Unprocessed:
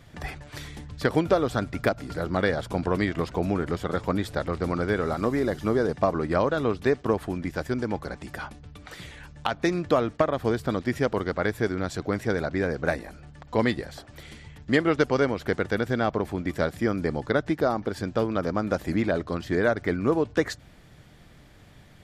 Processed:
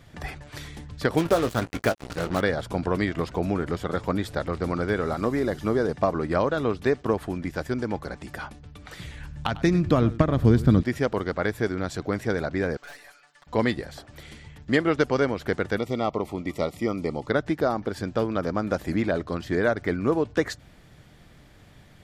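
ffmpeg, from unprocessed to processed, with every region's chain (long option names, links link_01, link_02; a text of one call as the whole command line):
ffmpeg -i in.wav -filter_complex "[0:a]asettb=1/sr,asplit=3[link_01][link_02][link_03];[link_01]atrim=end=1.174[link_04];[link_02]atrim=start=1.17:end=2.41,asetpts=PTS-STARTPTS,afade=type=in:duration=0.004:curve=qsin,afade=type=out:start_time=1.236:duration=0.004:curve=qsin,acrusher=bits=4:mix=0:aa=0.5,asplit=2[link_05][link_06];[link_06]adelay=18,volume=-11.5dB[link_07];[link_05][link_07]amix=inputs=2:normalize=0,atrim=end_sample=54684[link_08];[link_03]atrim=start=2.406[link_09];[link_04][link_08]acrossfade=duration=0.004:curve1=hsin:curve2=qsin[link_10];[link_10][link_09]acrossfade=duration=0.004:curve1=qsin:curve2=hsin,asettb=1/sr,asplit=3[link_11][link_12][link_13];[link_11]atrim=end=8.754[link_14];[link_12]atrim=start=8.75:end=10.83,asetpts=PTS-STARTPTS,afade=type=in:duration=0.004:curve=qsin,afade=type=out:start_time=2.076:duration=0.004:curve=qsin,asubboost=boost=10.5:cutoff=250,aecho=1:1:100:0.141,atrim=end_sample=91728[link_15];[link_13]atrim=start=10.826[link_16];[link_14][link_15]acrossfade=duration=0.004:curve1=hsin:curve2=qsin[link_17];[link_17][link_16]acrossfade=duration=0.004:curve1=qsin:curve2=hsin,asettb=1/sr,asplit=3[link_18][link_19][link_20];[link_18]atrim=end=12.774[link_21];[link_19]atrim=start=12.77:end=13.47,asetpts=PTS-STARTPTS,afade=type=in:duration=0.004:curve=qsin,afade=type=out:start_time=0.696:duration=0.004:curve=qsin,highpass=1200,aeval=exprs='(tanh(158*val(0)+0.3)-tanh(0.3))/158':channel_layout=same,aecho=1:1:7:0.93,atrim=end_sample=30870[link_22];[link_20]atrim=start=13.466[link_23];[link_21][link_22]acrossfade=duration=0.004:curve1=hsin:curve2=qsin[link_24];[link_24][link_23]acrossfade=duration=0.004:curve1=qsin:curve2=hsin,asettb=1/sr,asplit=3[link_25][link_26][link_27];[link_25]atrim=end=15.784[link_28];[link_26]atrim=start=15.78:end=17.28,asetpts=PTS-STARTPTS,afade=type=in:duration=0.004:curve=qsin,afade=type=out:start_time=1.496:duration=0.004:curve=qsin,asuperstop=centerf=1600:order=8:qfactor=3.1,lowshelf=frequency=140:gain=-6.5[link_29];[link_27]atrim=start=17.276[link_30];[link_28][link_29]acrossfade=duration=0.004:curve1=hsin:curve2=qsin[link_31];[link_31][link_30]acrossfade=duration=0.004:curve1=qsin:curve2=hsin" out.wav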